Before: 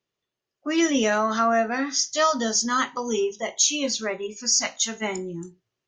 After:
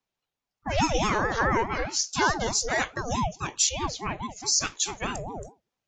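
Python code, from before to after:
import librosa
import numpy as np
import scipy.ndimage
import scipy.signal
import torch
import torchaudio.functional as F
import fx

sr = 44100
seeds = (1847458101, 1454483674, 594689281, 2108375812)

y = fx.high_shelf(x, sr, hz=3800.0, db=-10.5, at=(3.69, 4.1))
y = fx.ring_lfo(y, sr, carrier_hz=430.0, swing_pct=50, hz=4.7)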